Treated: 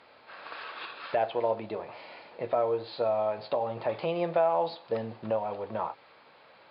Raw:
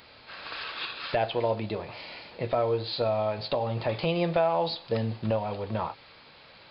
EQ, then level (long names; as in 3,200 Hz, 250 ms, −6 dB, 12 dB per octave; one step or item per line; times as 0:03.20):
resonant band-pass 760 Hz, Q 0.62
0.0 dB